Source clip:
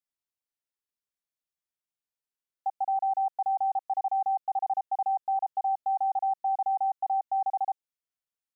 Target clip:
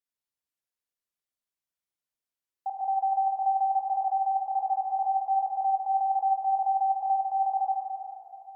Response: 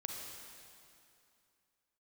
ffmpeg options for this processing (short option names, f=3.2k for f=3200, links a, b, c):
-filter_complex "[0:a]asettb=1/sr,asplit=3[a][b][c];[a]atrim=end=3.914[d];[b]atrim=start=3.91:end=4.36,asetpts=PTS-STARTPTS,afade=t=in:d=0.004:c=qsin,afade=t=out:st=0.446:d=0.004:c=qsin,highpass=f=450:p=1[e];[c]atrim=start=4.356[f];[d][e]acrossfade=d=0.004:c1=hsin:c2=qsin[g];[g][f]acrossfade=d=0.004:c1=qsin:c2=hsin[h];[1:a]atrim=start_sample=2205,asetrate=39690,aresample=44100[i];[h][i]afir=irnorm=-1:irlink=0"